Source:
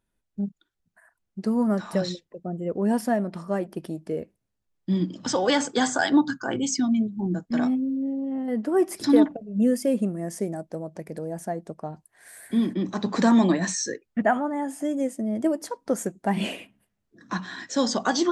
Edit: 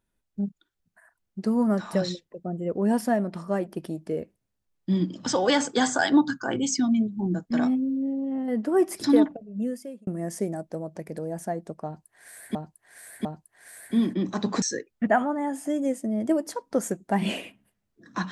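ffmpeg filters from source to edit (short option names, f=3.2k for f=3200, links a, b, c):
-filter_complex "[0:a]asplit=5[a][b][c][d][e];[a]atrim=end=10.07,asetpts=PTS-STARTPTS,afade=t=out:st=9.02:d=1.05[f];[b]atrim=start=10.07:end=12.552,asetpts=PTS-STARTPTS,afade=t=in:d=0.004:c=hsin[g];[c]atrim=start=11.848:end=12.552[h];[d]atrim=start=11.848:end=13.222[i];[e]atrim=start=13.768[j];[f][g]concat=n=2:v=0:a=1[k];[k][h]acrossfade=d=0.004:c1=hsin:c2=hsin[l];[l][i]acrossfade=d=0.004:c1=hsin:c2=hsin[m];[m][j]acrossfade=d=0.004:c1=hsin:c2=hsin"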